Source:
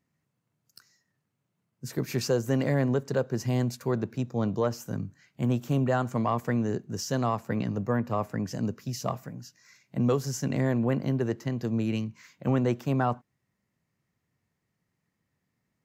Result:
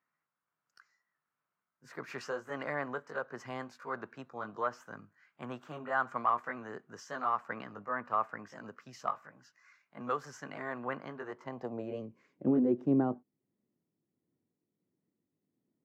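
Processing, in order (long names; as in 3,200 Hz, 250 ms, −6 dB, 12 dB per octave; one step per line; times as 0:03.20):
pitch shifter swept by a sawtooth +1 semitone, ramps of 286 ms
band-pass filter sweep 1,300 Hz → 320 Hz, 0:11.22–0:12.45
level +5 dB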